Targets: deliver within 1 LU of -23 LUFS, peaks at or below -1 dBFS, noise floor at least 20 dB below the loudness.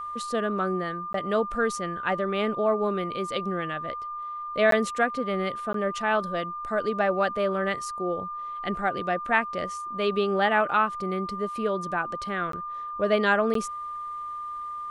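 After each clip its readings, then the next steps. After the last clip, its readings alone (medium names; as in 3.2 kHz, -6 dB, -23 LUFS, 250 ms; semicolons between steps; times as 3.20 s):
dropouts 5; longest dropout 13 ms; steady tone 1.2 kHz; tone level -32 dBFS; loudness -27.0 LUFS; peak level -7.5 dBFS; loudness target -23.0 LUFS
-> interpolate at 1.13/4.71/5.73/12.52/13.54 s, 13 ms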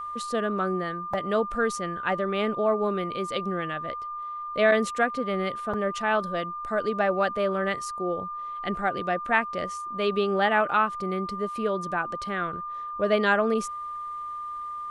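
dropouts 0; steady tone 1.2 kHz; tone level -32 dBFS
-> band-stop 1.2 kHz, Q 30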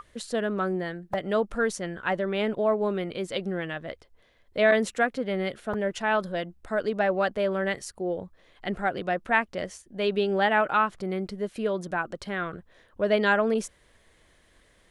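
steady tone not found; loudness -27.5 LUFS; peak level -8.0 dBFS; loudness target -23.0 LUFS
-> trim +4.5 dB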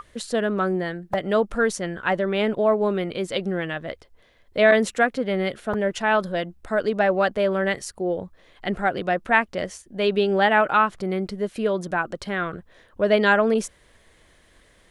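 loudness -23.0 LUFS; peak level -3.5 dBFS; noise floor -57 dBFS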